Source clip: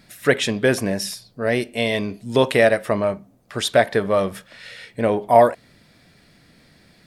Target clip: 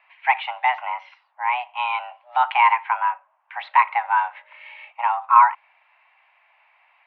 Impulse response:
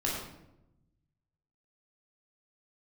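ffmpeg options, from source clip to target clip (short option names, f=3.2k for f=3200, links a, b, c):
-filter_complex "[0:a]asettb=1/sr,asplit=3[a][b][c];[a]atrim=end=3.594[d];[b]atrim=start=3.59:end=4.91,asetpts=PTS-STARTPTS,afade=t=in:d=0.004:c=qsin,afade=t=out:st=1.316:d=0.004:c=qsin,aeval=exprs='val(0)+0.0316*(sin(2*PI*50*n/s)+sin(2*PI*2*50*n/s)/2+sin(2*PI*3*50*n/s)/3+sin(2*PI*4*50*n/s)/4+sin(2*PI*5*50*n/s)/5)':c=same[e];[c]atrim=start=4.906[f];[d][e]acrossfade=d=0.004:c1=hsin:c2=qsin[g];[g][f]acrossfade=d=0.004:c1=qsin:c2=hsin,highpass=f=420:t=q:w=0.5412,highpass=f=420:t=q:w=1.307,lowpass=f=2.4k:t=q:w=0.5176,lowpass=f=2.4k:t=q:w=0.7071,lowpass=f=2.4k:t=q:w=1.932,afreqshift=370"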